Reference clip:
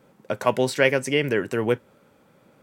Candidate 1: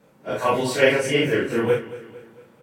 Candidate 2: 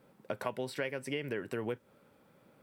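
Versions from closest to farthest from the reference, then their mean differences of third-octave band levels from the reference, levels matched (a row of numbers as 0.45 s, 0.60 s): 2, 1; 3.0 dB, 5.0 dB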